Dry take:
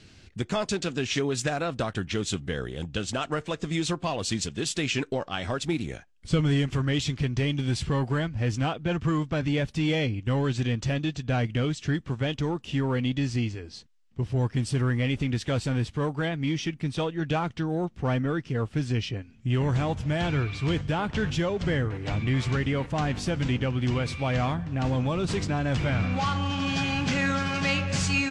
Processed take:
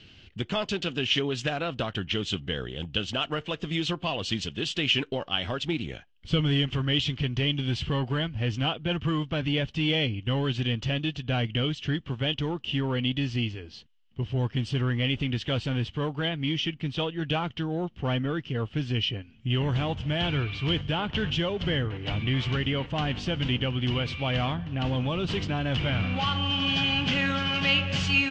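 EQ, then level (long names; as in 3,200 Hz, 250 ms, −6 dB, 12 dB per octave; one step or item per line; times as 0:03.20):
high-frequency loss of the air 200 metres
parametric band 3,000 Hz +13.5 dB 0.36 octaves
high-shelf EQ 4,500 Hz +9 dB
−1.5 dB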